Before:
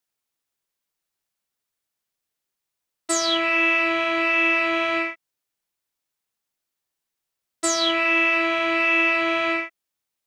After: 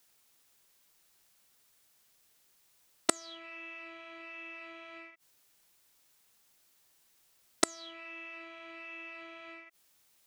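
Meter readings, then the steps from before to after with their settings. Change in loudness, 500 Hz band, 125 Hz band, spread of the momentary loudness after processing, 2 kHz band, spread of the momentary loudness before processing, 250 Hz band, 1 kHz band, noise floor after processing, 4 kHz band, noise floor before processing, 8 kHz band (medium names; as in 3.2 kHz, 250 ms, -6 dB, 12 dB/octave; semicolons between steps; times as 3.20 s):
-19.5 dB, -19.0 dB, no reading, 16 LU, -24.0 dB, 8 LU, -18.5 dB, -19.5 dB, -69 dBFS, -18.0 dB, -84 dBFS, -9.5 dB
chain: treble shelf 3 kHz +3.5 dB; in parallel at +2.5 dB: peak limiter -18.5 dBFS, peak gain reduction 10.5 dB; on the sum: inverted gate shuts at -12 dBFS, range -36 dB; trim +4.5 dB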